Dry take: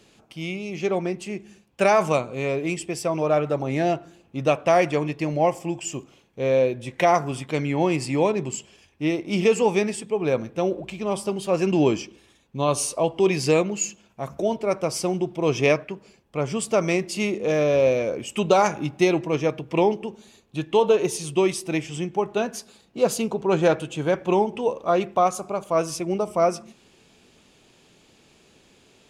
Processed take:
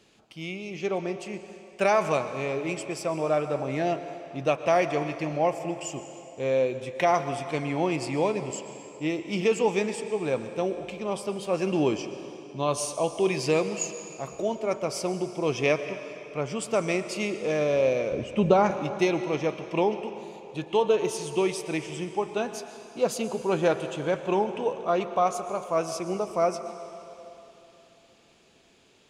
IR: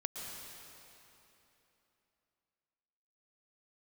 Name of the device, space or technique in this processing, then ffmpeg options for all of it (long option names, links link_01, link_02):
filtered reverb send: -filter_complex "[0:a]asettb=1/sr,asplit=3[link_01][link_02][link_03];[link_01]atrim=end=18.124[link_04];[link_02]atrim=start=18.12:end=18.71,asetpts=PTS-STARTPTS,afade=type=in:duration=0.004:curve=qsin,afade=type=out:start_time=0.586:duration=0.004:curve=qsin,aemphasis=mode=reproduction:type=riaa[link_05];[link_03]atrim=start=18.706[link_06];[link_04][link_05]acrossfade=duration=0.004:curve1=hsin:curve2=qsin[link_07];[link_07][link_06]acrossfade=duration=0.004:curve1=qsin:curve2=hsin,asplit=2[link_08][link_09];[link_09]highpass=frequency=370:poles=1,lowpass=8800[link_10];[1:a]atrim=start_sample=2205[link_11];[link_10][link_11]afir=irnorm=-1:irlink=0,volume=-4dB[link_12];[link_08][link_12]amix=inputs=2:normalize=0,volume=-7dB"